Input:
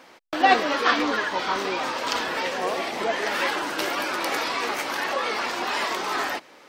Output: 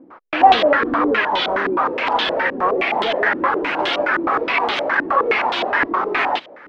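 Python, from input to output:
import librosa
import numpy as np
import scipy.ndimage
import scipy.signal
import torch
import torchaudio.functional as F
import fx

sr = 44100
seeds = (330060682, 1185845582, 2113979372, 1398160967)

y = 10.0 ** (-18.5 / 20.0) * np.tanh(x / 10.0 ** (-18.5 / 20.0))
y = fx.filter_held_lowpass(y, sr, hz=9.6, low_hz=310.0, high_hz=3400.0)
y = y * 10.0 ** (5.0 / 20.0)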